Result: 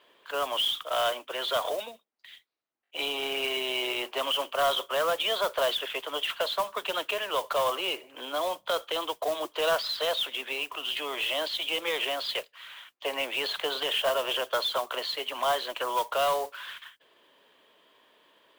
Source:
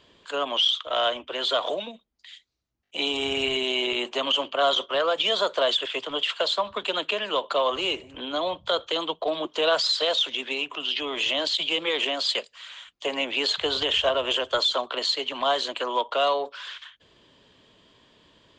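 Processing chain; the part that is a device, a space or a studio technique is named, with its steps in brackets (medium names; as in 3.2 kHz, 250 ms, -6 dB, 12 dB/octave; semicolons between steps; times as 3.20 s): carbon microphone (band-pass 480–2800 Hz; saturation -18.5 dBFS, distortion -19 dB; modulation noise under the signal 16 dB)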